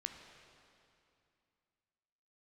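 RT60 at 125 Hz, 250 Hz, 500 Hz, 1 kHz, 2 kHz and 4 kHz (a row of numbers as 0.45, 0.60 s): 2.9, 2.9, 2.5, 2.6, 2.5, 2.3 s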